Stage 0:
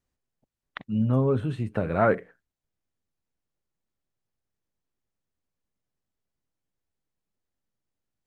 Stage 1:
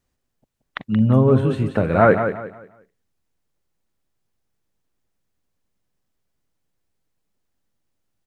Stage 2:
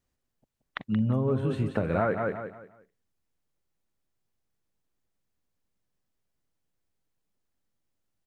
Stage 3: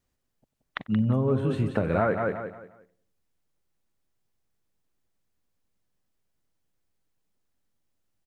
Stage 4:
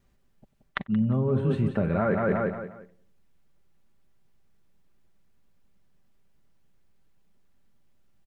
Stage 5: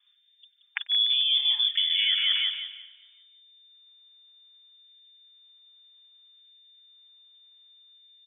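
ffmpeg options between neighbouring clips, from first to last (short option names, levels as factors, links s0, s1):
-af "aecho=1:1:177|354|531|708:0.376|0.113|0.0338|0.0101,volume=2.37"
-af "acompressor=threshold=0.158:ratio=10,volume=0.531"
-filter_complex "[0:a]asplit=2[s0][s1];[s1]adelay=94,lowpass=f=840:p=1,volume=0.133,asplit=2[s2][s3];[s3]adelay=94,lowpass=f=840:p=1,volume=0.5,asplit=2[s4][s5];[s5]adelay=94,lowpass=f=840:p=1,volume=0.5,asplit=2[s6][s7];[s7]adelay=94,lowpass=f=840:p=1,volume=0.5[s8];[s0][s2][s4][s6][s8]amix=inputs=5:normalize=0,volume=1.26"
-af "bass=f=250:g=5,treble=f=4000:g=-7,aecho=1:1:5.1:0.35,areverse,acompressor=threshold=0.0355:ratio=10,areverse,volume=2.51"
-af "aecho=1:1:147|294|441|588|735:0.1|0.06|0.036|0.0216|0.013,lowpass=f=3100:t=q:w=0.5098,lowpass=f=3100:t=q:w=0.6013,lowpass=f=3100:t=q:w=0.9,lowpass=f=3100:t=q:w=2.563,afreqshift=-3600,afftfilt=real='re*gte(b*sr/1024,380*pow(1600/380,0.5+0.5*sin(2*PI*0.64*pts/sr)))':imag='im*gte(b*sr/1024,380*pow(1600/380,0.5+0.5*sin(2*PI*0.64*pts/sr)))':win_size=1024:overlap=0.75"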